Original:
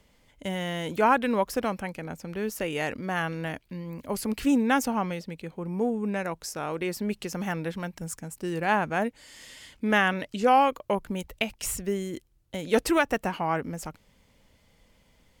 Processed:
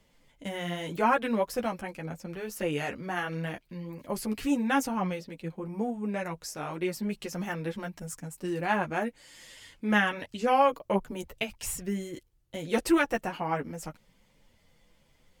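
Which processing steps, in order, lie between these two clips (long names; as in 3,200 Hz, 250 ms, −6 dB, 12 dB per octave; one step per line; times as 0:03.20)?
multi-voice chorus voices 6, 0.76 Hz, delay 10 ms, depth 4.5 ms
floating-point word with a short mantissa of 8 bits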